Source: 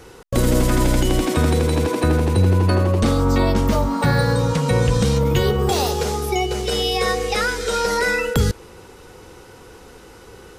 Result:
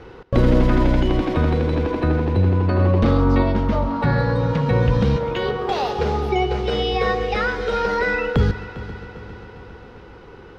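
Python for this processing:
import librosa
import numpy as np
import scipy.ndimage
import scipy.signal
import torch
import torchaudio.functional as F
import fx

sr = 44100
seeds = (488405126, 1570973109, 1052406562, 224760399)

y = fx.highpass(x, sr, hz=460.0, slope=12, at=(5.16, 5.99))
y = fx.rider(y, sr, range_db=10, speed_s=2.0)
y = fx.air_absorb(y, sr, metres=290.0)
y = fx.echo_heads(y, sr, ms=134, heads='first and third', feedback_pct=69, wet_db=-17.0)
y = fx.env_flatten(y, sr, amount_pct=50, at=(2.78, 3.41), fade=0.02)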